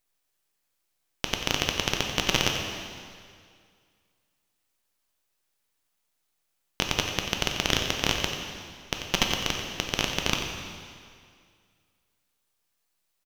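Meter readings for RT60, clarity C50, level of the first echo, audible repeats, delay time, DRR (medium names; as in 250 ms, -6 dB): 2.1 s, 3.0 dB, -10.5 dB, 1, 90 ms, 1.5 dB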